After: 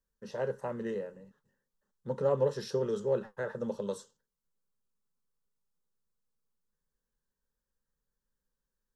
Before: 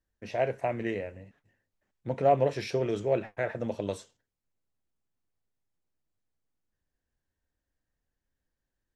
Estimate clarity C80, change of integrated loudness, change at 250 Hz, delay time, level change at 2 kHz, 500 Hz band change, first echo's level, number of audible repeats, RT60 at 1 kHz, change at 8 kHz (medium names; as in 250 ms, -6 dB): no reverb, -4.0 dB, -4.0 dB, no echo, -7.5 dB, -3.0 dB, no echo, no echo, no reverb, -1.0 dB